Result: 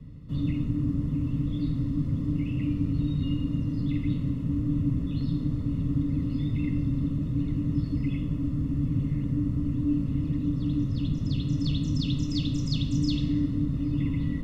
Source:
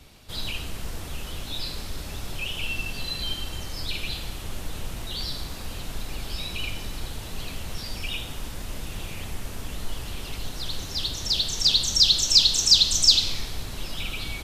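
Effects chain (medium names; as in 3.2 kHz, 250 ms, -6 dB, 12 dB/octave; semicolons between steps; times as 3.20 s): frequency shift -300 Hz; boxcar filter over 56 samples; resonant low shelf 180 Hz +7 dB, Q 3; trim +6 dB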